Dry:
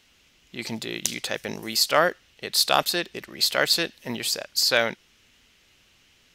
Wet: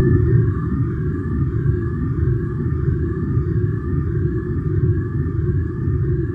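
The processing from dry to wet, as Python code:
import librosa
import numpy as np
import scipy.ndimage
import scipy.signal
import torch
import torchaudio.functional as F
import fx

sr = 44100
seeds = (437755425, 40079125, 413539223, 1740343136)

p1 = fx.octave_mirror(x, sr, pivot_hz=450.0)
p2 = fx.rider(p1, sr, range_db=10, speed_s=0.5)
p3 = p1 + F.gain(torch.from_numpy(p2), -1.5).numpy()
p4 = scipy.signal.sosfilt(scipy.signal.cheby1(4, 1.0, [370.0, 1100.0], 'bandstop', fs=sr, output='sos'), p3)
p5 = p4 + fx.echo_swell(p4, sr, ms=114, loudest=8, wet_db=-11.5, dry=0)
p6 = fx.paulstretch(p5, sr, seeds[0], factor=5.6, window_s=0.05, from_s=4.82)
p7 = fx.vibrato(p6, sr, rate_hz=0.34, depth_cents=12.0)
y = F.gain(torch.from_numpy(p7), 2.0).numpy()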